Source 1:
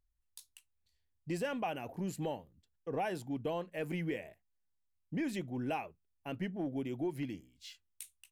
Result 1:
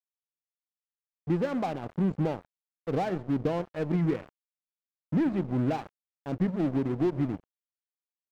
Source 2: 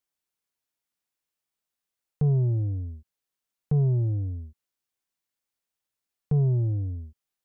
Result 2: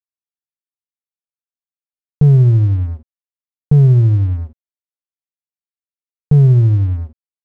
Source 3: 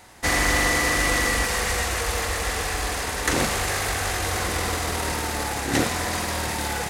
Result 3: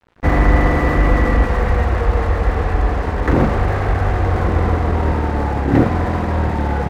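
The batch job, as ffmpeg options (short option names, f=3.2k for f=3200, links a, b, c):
-filter_complex "[0:a]lowpass=1.3k,lowshelf=f=310:g=9.5,aecho=1:1:127:0.119,asplit=2[a][b];[b]acontrast=76,volume=-1.5dB[c];[a][c]amix=inputs=2:normalize=0,aeval=exprs='sgn(val(0))*max(abs(val(0))-0.0211,0)':c=same,volume=-2.5dB"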